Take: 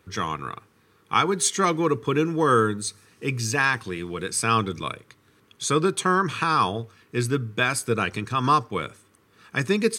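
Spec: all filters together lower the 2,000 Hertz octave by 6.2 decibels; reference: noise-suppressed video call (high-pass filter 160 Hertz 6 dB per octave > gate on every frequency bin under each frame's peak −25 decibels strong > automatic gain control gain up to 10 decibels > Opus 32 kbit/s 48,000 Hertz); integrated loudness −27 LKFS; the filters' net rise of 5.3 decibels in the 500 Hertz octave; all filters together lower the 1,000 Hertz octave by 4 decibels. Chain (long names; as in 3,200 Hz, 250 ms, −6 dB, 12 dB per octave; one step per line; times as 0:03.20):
high-pass filter 160 Hz 6 dB per octave
parametric band 500 Hz +8 dB
parametric band 1,000 Hz −4 dB
parametric band 2,000 Hz −7.5 dB
gate on every frequency bin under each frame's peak −25 dB strong
automatic gain control gain up to 10 dB
level −3 dB
Opus 32 kbit/s 48,000 Hz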